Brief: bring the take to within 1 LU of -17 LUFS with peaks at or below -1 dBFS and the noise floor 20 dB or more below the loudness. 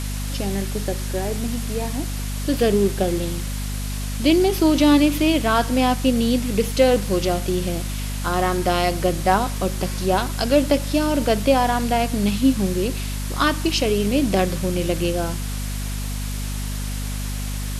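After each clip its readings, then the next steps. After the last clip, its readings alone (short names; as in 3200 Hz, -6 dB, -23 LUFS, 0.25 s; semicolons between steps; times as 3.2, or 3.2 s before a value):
hum 50 Hz; harmonics up to 250 Hz; hum level -24 dBFS; noise floor -27 dBFS; noise floor target -42 dBFS; loudness -21.5 LUFS; peak -3.5 dBFS; loudness target -17.0 LUFS
-> notches 50/100/150/200/250 Hz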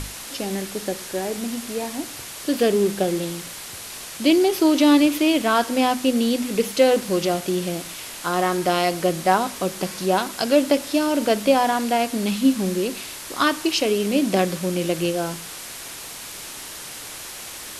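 hum none; noise floor -36 dBFS; noise floor target -42 dBFS
-> denoiser 6 dB, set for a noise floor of -36 dBFS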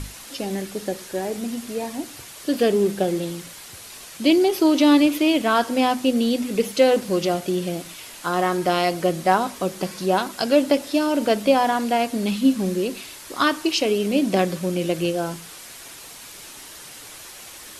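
noise floor -41 dBFS; noise floor target -42 dBFS
-> denoiser 6 dB, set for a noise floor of -41 dBFS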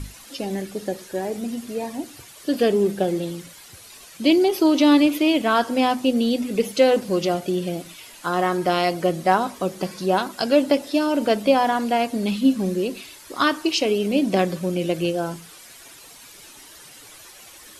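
noise floor -45 dBFS; loudness -21.5 LUFS; peak -4.5 dBFS; loudness target -17.0 LUFS
-> gain +4.5 dB; limiter -1 dBFS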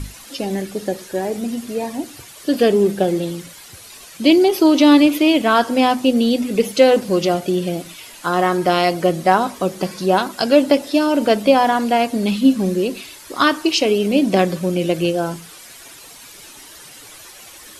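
loudness -17.0 LUFS; peak -1.0 dBFS; noise floor -41 dBFS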